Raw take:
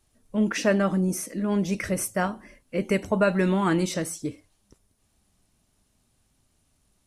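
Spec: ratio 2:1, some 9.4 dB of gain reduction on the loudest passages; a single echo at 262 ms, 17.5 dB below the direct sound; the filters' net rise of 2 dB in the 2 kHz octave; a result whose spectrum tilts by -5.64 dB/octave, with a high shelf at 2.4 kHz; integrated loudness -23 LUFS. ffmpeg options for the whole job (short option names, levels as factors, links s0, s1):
-af "equalizer=f=2000:t=o:g=5,highshelf=f=2400:g=-5.5,acompressor=threshold=0.0178:ratio=2,aecho=1:1:262:0.133,volume=3.35"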